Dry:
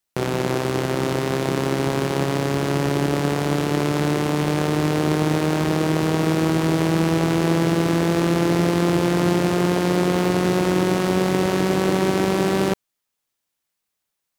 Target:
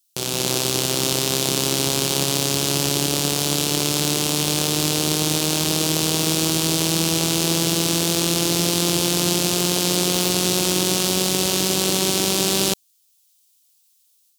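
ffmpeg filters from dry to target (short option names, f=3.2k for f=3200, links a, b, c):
-af "dynaudnorm=f=220:g=3:m=6dB,aexciter=amount=5.8:drive=7.6:freq=2.8k,volume=-8dB"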